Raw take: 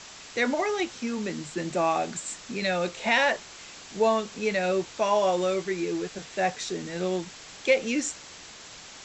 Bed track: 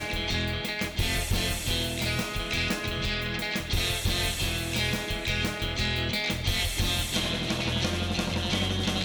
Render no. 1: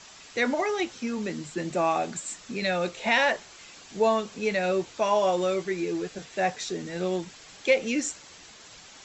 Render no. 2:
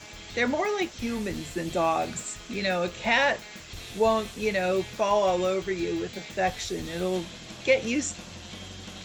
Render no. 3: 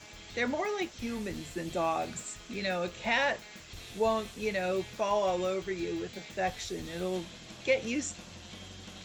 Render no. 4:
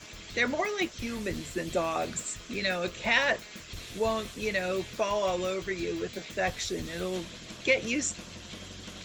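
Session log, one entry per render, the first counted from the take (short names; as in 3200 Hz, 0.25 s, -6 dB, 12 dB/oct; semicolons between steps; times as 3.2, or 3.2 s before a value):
denoiser 6 dB, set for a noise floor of -46 dBFS
add bed track -14.5 dB
gain -5.5 dB
harmonic-percussive split percussive +7 dB; bell 810 Hz -8.5 dB 0.21 oct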